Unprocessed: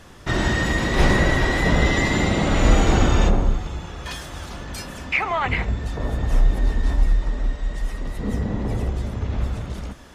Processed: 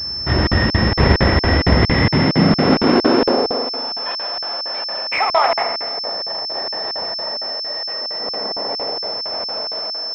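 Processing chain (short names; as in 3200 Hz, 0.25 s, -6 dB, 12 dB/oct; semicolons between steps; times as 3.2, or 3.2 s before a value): one-sided fold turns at -18 dBFS; 5.83–6.55 tube stage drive 21 dB, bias 0.6; high-pass sweep 73 Hz -> 630 Hz, 1.72–3.6; on a send: dark delay 0.164 s, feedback 36%, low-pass 1000 Hz, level -6 dB; on the sum: spring tank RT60 1.2 s, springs 42 ms, chirp 55 ms, DRR 5.5 dB; crackling interface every 0.23 s, samples 2048, zero, from 0.47; pulse-width modulation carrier 5300 Hz; gain +4 dB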